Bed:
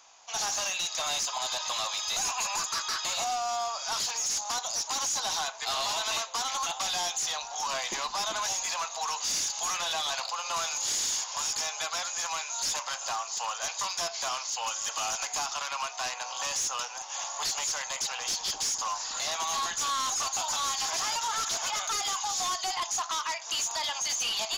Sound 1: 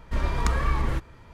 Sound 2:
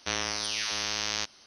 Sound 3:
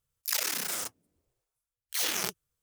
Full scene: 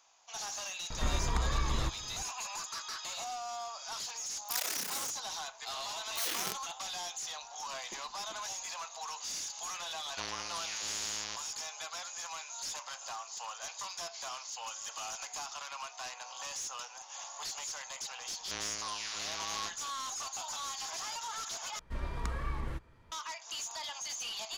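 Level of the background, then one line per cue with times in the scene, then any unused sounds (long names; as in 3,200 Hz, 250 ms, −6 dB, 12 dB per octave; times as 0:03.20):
bed −9.5 dB
0:00.90: mix in 1 −7.5 dB + multiband upward and downward compressor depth 70%
0:04.23: mix in 3 −5.5 dB
0:10.11: mix in 2 −10.5 dB
0:18.44: mix in 2 −10 dB + notch filter 840 Hz, Q 5
0:21.79: overwrite with 1 −12 dB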